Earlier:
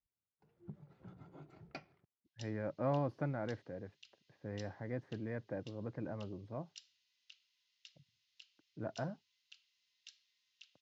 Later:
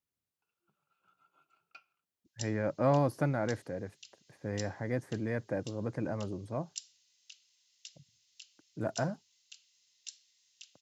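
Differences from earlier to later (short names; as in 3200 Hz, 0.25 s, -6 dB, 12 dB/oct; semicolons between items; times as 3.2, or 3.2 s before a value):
speech +7.0 dB; first sound: add double band-pass 1900 Hz, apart 0.94 oct; master: remove air absorption 240 m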